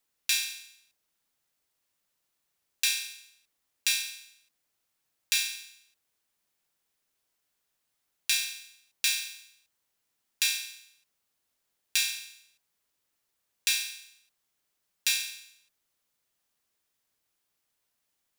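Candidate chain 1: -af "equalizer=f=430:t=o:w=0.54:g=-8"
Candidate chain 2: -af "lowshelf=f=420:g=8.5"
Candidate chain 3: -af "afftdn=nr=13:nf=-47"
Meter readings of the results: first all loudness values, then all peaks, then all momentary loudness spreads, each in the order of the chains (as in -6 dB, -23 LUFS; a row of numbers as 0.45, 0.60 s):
-29.0, -28.5, -29.0 LUFS; -5.5, -5.5, -6.0 dBFS; 16, 16, 15 LU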